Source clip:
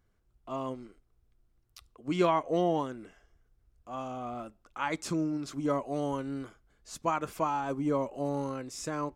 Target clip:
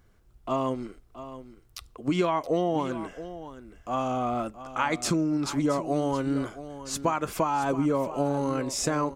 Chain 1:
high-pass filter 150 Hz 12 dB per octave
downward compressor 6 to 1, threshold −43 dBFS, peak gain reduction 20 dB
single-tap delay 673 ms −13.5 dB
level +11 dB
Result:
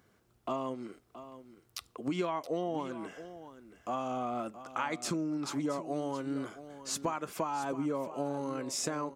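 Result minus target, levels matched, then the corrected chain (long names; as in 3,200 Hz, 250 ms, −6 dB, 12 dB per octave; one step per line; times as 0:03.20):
downward compressor: peak gain reduction +8 dB; 125 Hz band −2.5 dB
downward compressor 6 to 1, threshold −33.5 dBFS, peak gain reduction 12 dB
single-tap delay 673 ms −13.5 dB
level +11 dB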